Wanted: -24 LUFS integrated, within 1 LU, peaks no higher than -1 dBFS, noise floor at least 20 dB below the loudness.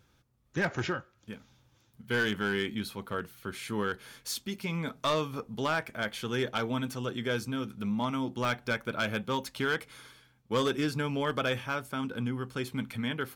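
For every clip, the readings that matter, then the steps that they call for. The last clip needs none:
clipped samples 0.6%; clipping level -22.0 dBFS; dropouts 1; longest dropout 1.4 ms; loudness -32.5 LUFS; peak level -22.0 dBFS; loudness target -24.0 LUFS
-> clip repair -22 dBFS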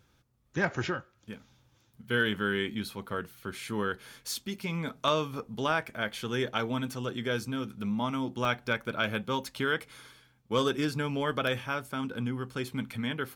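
clipped samples 0.0%; dropouts 1; longest dropout 1.4 ms
-> interpolate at 8.45 s, 1.4 ms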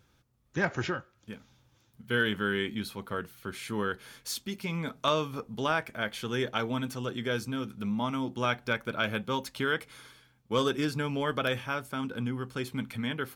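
dropouts 0; loudness -32.0 LUFS; peak level -13.0 dBFS; loudness target -24.0 LUFS
-> trim +8 dB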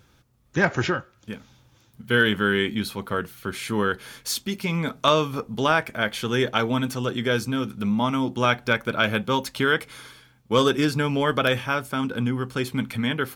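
loudness -24.0 LUFS; peak level -5.0 dBFS; noise floor -60 dBFS

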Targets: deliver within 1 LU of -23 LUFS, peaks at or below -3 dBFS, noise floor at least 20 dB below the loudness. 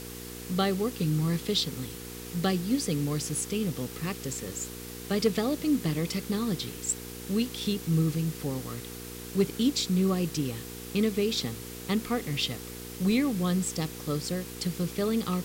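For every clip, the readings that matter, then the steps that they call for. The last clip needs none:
hum 60 Hz; highest harmonic 480 Hz; hum level -42 dBFS; noise floor -41 dBFS; noise floor target -50 dBFS; loudness -29.5 LUFS; peak level -13.5 dBFS; loudness target -23.0 LUFS
-> de-hum 60 Hz, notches 8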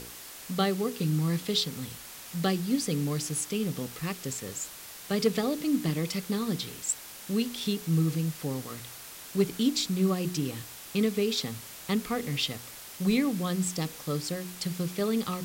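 hum not found; noise floor -45 dBFS; noise floor target -50 dBFS
-> noise reduction 6 dB, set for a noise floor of -45 dBFS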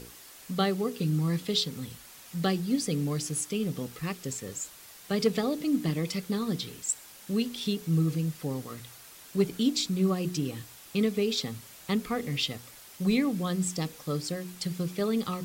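noise floor -50 dBFS; loudness -30.0 LUFS; peak level -12.0 dBFS; loudness target -23.0 LUFS
-> trim +7 dB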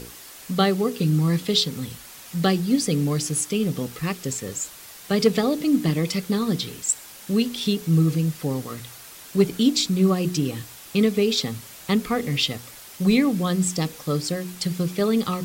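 loudness -23.0 LUFS; peak level -5.0 dBFS; noise floor -43 dBFS

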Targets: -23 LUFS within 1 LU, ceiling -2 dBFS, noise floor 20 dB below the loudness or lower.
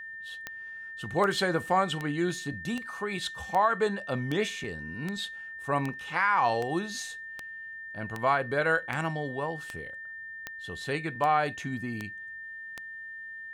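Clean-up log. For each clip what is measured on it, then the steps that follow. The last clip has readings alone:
clicks found 17; steady tone 1.8 kHz; tone level -39 dBFS; loudness -31.0 LUFS; peak level -13.0 dBFS; loudness target -23.0 LUFS
-> de-click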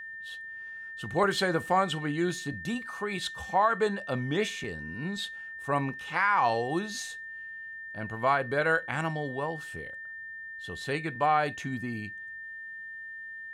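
clicks found 0; steady tone 1.8 kHz; tone level -39 dBFS
-> band-stop 1.8 kHz, Q 30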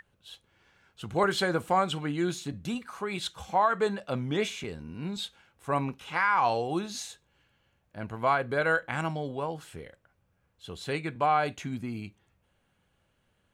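steady tone not found; loudness -30.0 LUFS; peak level -14.0 dBFS; loudness target -23.0 LUFS
-> trim +7 dB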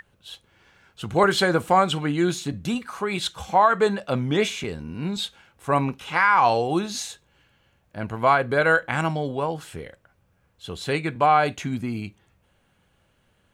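loudness -23.0 LUFS; peak level -7.0 dBFS; noise floor -66 dBFS

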